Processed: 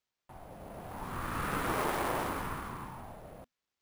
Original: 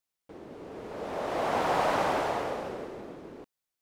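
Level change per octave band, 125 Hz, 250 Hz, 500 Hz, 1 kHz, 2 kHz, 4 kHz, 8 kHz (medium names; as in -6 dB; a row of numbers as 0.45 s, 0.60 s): +3.0 dB, -2.5 dB, -9.0 dB, -6.0 dB, -2.5 dB, -5.0 dB, +1.5 dB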